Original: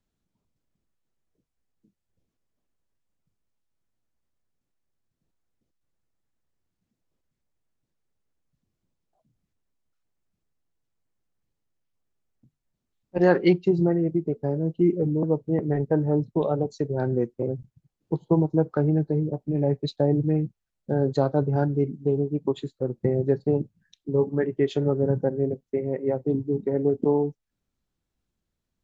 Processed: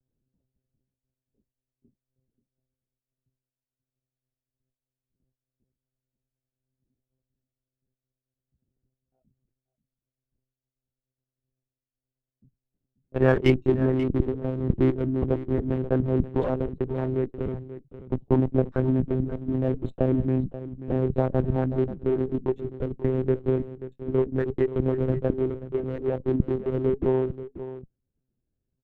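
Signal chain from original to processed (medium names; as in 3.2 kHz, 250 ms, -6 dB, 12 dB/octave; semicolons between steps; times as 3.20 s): local Wiener filter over 41 samples; dynamic bell 560 Hz, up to -3 dB, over -33 dBFS, Q 0.79; monotone LPC vocoder at 8 kHz 130 Hz; on a send: delay 534 ms -13.5 dB; on the sum: sliding maximum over 3 samples; trim +2 dB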